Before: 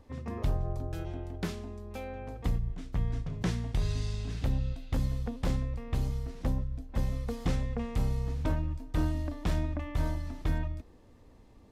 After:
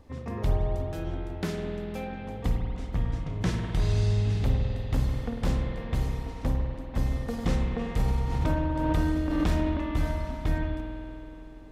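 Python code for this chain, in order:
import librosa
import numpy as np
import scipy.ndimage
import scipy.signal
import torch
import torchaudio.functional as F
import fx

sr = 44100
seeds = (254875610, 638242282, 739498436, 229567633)

y = fx.rev_spring(x, sr, rt60_s=3.3, pass_ms=(48,), chirp_ms=50, drr_db=1.0)
y = fx.pre_swell(y, sr, db_per_s=28.0, at=(7.99, 9.81))
y = F.gain(torch.from_numpy(y), 2.5).numpy()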